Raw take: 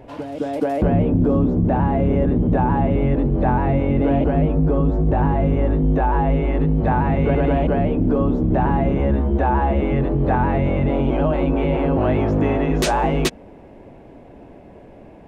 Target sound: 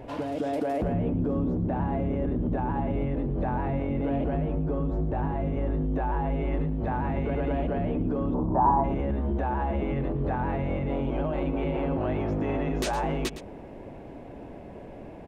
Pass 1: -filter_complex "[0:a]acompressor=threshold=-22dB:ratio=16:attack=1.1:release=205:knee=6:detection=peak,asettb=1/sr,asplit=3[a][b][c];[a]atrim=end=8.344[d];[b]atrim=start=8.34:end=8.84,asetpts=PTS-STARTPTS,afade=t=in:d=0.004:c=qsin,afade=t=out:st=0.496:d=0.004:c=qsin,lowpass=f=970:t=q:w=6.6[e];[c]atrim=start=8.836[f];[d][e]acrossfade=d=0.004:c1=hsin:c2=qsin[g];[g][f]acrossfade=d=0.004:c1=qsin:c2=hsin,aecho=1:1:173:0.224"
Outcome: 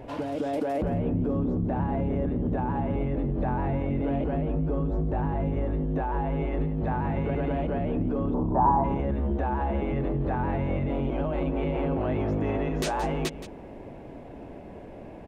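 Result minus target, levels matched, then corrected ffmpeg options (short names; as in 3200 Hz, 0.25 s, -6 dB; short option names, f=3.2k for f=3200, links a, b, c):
echo 61 ms late
-filter_complex "[0:a]acompressor=threshold=-22dB:ratio=16:attack=1.1:release=205:knee=6:detection=peak,asettb=1/sr,asplit=3[a][b][c];[a]atrim=end=8.344[d];[b]atrim=start=8.34:end=8.84,asetpts=PTS-STARTPTS,afade=t=in:d=0.004:c=qsin,afade=t=out:st=0.496:d=0.004:c=qsin,lowpass=f=970:t=q:w=6.6[e];[c]atrim=start=8.836[f];[d][e]acrossfade=d=0.004:c1=hsin:c2=qsin[g];[g][f]acrossfade=d=0.004:c1=qsin:c2=hsin,aecho=1:1:112:0.224"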